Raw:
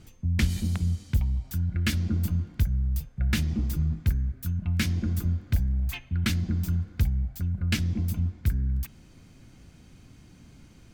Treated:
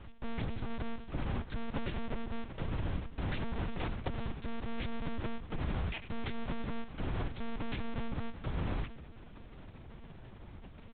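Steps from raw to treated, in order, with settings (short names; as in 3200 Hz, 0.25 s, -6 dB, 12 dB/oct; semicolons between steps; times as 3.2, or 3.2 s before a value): half-waves squared off; bell 340 Hz -4 dB 0.92 oct; compressor 16:1, threshold -26 dBFS, peak gain reduction 10.5 dB; 1.68–2.31 transient shaper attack +6 dB, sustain -4 dB; 3.64–4.3 frequency shift -21 Hz; on a send: frequency-shifting echo 95 ms, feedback 47%, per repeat -98 Hz, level -15.5 dB; on the sum: added harmonics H 3 -17 dB, 4 -40 dB, 6 -44 dB, 7 -20 dB, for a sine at -4.5 dBFS; monotone LPC vocoder at 8 kHz 230 Hz; gain +15.5 dB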